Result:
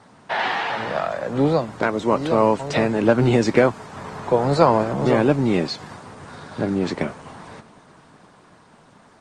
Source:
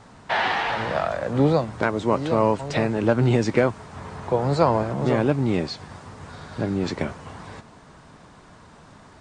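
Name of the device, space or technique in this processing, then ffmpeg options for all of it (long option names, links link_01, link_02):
video call: -af "highpass=140,dynaudnorm=framelen=200:gausssize=21:maxgain=6.5dB" -ar 48000 -c:a libopus -b:a 24k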